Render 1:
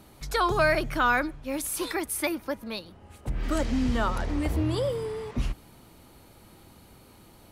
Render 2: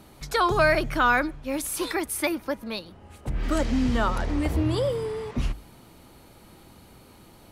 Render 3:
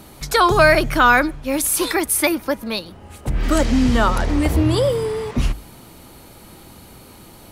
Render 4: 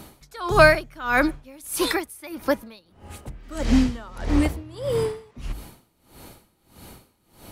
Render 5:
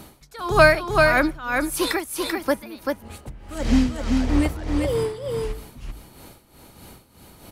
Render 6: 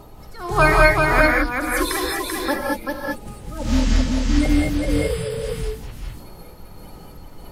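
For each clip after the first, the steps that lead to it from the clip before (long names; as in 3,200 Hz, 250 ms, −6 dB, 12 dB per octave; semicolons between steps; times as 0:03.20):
high-shelf EQ 10,000 Hz −3.5 dB; mains-hum notches 50/100 Hz; level +2.5 dB
high-shelf EQ 6,700 Hz +6 dB; level +7.5 dB
tremolo with a sine in dB 1.6 Hz, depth 25 dB
single-tap delay 388 ms −3.5 dB
spectral magnitudes quantised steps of 30 dB; background noise brown −42 dBFS; reverb whose tail is shaped and stops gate 240 ms rising, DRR −2.5 dB; level −1.5 dB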